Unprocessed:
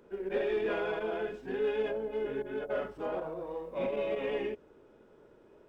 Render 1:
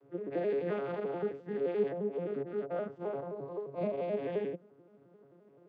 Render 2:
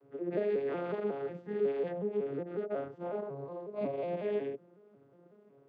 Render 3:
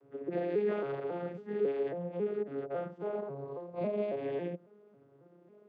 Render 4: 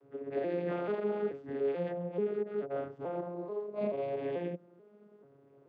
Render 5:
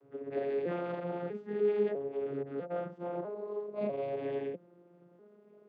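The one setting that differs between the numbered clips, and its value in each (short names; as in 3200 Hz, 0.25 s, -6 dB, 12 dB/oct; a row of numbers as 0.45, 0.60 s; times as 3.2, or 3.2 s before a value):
arpeggiated vocoder, a note every: 87, 183, 274, 435, 648 ms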